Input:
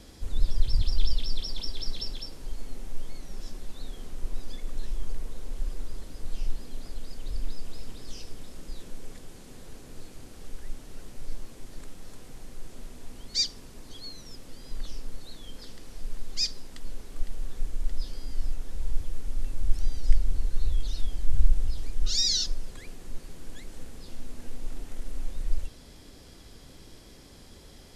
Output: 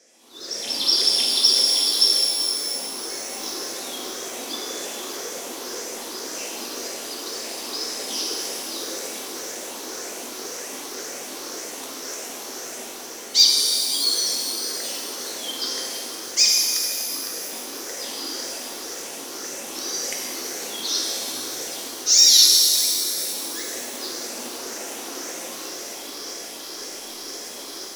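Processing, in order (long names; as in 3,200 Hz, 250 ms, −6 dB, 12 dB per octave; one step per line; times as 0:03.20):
rippled gain that drifts along the octave scale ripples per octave 0.54, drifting +1.9 Hz, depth 11 dB
high-pass filter 310 Hz 24 dB per octave
parametric band 5,900 Hz +10.5 dB 0.38 octaves
automatic gain control gain up to 14.5 dB
leveller curve on the samples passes 1
reverb with rising layers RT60 2.9 s, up +12 semitones, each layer −8 dB, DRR −2.5 dB
level −6 dB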